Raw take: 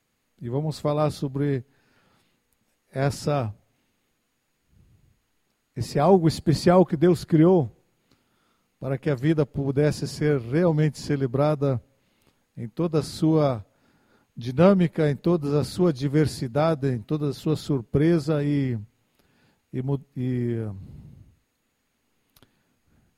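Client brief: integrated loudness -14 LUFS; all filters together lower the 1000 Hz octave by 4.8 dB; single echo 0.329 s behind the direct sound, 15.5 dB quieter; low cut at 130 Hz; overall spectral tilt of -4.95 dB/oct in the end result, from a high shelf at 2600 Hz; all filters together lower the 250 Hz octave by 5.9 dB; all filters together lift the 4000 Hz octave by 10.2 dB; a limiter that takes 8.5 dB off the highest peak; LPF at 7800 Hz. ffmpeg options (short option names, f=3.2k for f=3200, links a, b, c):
-af "highpass=130,lowpass=7.8k,equalizer=f=250:t=o:g=-8.5,equalizer=f=1k:t=o:g=-8,highshelf=f=2.6k:g=8,equalizer=f=4k:t=o:g=6,alimiter=limit=-17.5dB:level=0:latency=1,aecho=1:1:329:0.168,volume=15dB"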